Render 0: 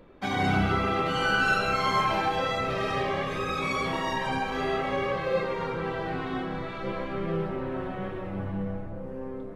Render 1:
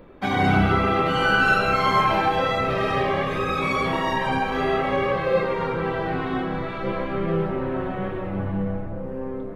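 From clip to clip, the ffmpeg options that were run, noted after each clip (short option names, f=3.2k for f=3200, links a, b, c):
-af "equalizer=f=6.5k:t=o:w=1.5:g=-7,volume=6dB"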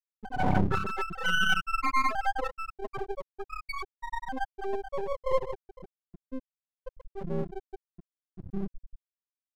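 -af "afftfilt=real='re*gte(hypot(re,im),0.501)':imag='im*gte(hypot(re,im),0.501)':win_size=1024:overlap=0.75,aeval=exprs='max(val(0),0)':c=same"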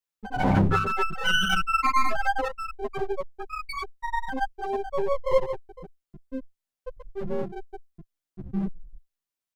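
-filter_complex "[0:a]asplit=2[a][b];[b]adelay=10.2,afreqshift=-0.99[c];[a][c]amix=inputs=2:normalize=1,volume=8dB"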